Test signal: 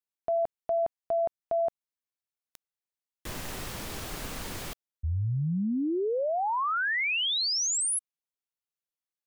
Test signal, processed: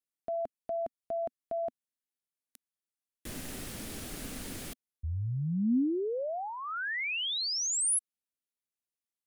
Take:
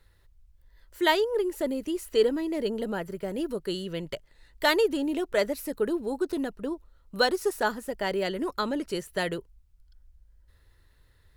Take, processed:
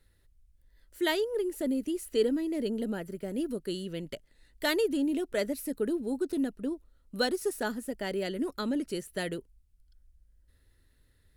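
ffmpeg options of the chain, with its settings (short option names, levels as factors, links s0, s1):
-af "equalizer=f=250:t=o:w=0.67:g=8,equalizer=f=1000:t=o:w=0.67:g=-7,equalizer=f=10000:t=o:w=0.67:g=6,volume=0.562"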